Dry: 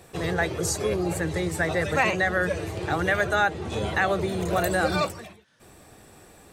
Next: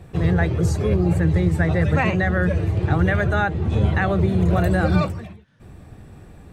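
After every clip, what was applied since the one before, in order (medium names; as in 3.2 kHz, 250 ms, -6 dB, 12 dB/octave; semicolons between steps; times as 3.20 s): tone controls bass +15 dB, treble -10 dB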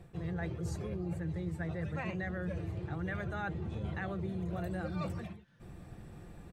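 comb 5.8 ms, depth 32%; reverse; compression 6:1, threshold -28 dBFS, peak gain reduction 15.5 dB; reverse; trim -7 dB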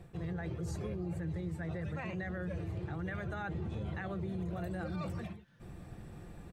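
peak limiter -31.5 dBFS, peak gain reduction 6.5 dB; trim +1 dB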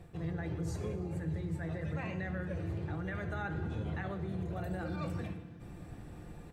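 FDN reverb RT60 1.6 s, low-frequency decay 1.25×, high-frequency decay 0.65×, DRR 6.5 dB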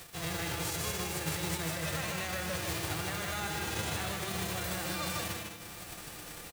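formants flattened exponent 0.3; delay 154 ms -3 dB; tape noise reduction on one side only encoder only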